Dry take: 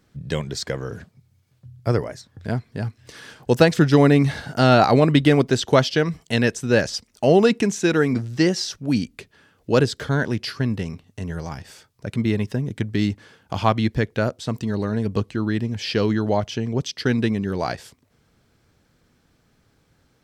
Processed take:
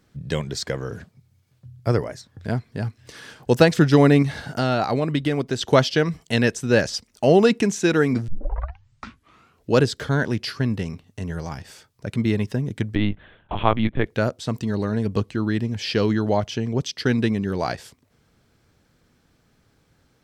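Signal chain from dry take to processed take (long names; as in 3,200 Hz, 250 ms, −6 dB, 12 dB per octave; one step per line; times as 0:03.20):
0:04.22–0:05.61: downward compressor 2 to 1, threshold −24 dBFS, peak gain reduction 8 dB
0:08.28: tape start 1.42 s
0:12.95–0:14.06: linear-prediction vocoder at 8 kHz pitch kept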